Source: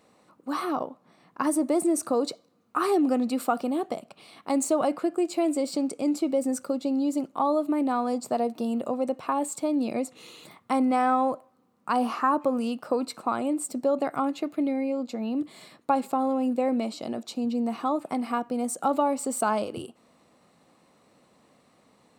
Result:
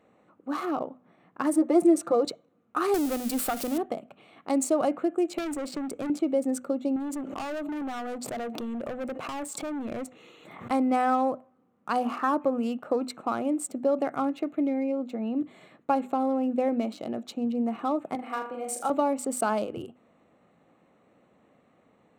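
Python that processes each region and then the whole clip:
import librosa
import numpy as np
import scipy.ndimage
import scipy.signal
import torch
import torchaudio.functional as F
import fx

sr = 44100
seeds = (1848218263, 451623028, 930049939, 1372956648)

y = fx.chain(x, sr, fx.high_shelf(hz=7500.0, db=-11.0),
    fx.comb(ms=5.8, depth=0.78), at=(1.53, 2.25))
y = fx.chain(y, sr, fx.crossing_spikes(level_db=-22.5),
    fx.tube_stage(drive_db=21.0, bias=0.4),
    fx.band_squash(depth_pct=70), at=(2.94, 3.78))
y = fx.chain(y, sr, fx.clip_hard(threshold_db=-30.0),
    fx.band_squash(depth_pct=100), at=(5.38, 6.1))
y = fx.chain(y, sr, fx.low_shelf(hz=200.0, db=-5.0),
    fx.clip_hard(threshold_db=-30.5),
    fx.pre_swell(db_per_s=39.0), at=(6.96, 10.71))
y = fx.chain(y, sr, fx.highpass(hz=720.0, slope=6),
    fx.room_flutter(wall_m=6.8, rt60_s=0.55), at=(18.15, 18.9))
y = fx.wiener(y, sr, points=9)
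y = fx.peak_eq(y, sr, hz=1000.0, db=-5.5, octaves=0.33)
y = fx.hum_notches(y, sr, base_hz=50, count=5)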